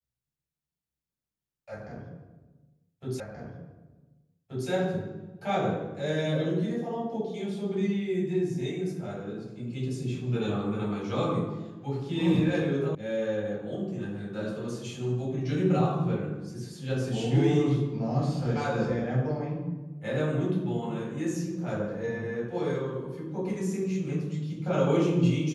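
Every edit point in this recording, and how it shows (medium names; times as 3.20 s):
3.20 s: repeat of the last 1.48 s
12.95 s: sound stops dead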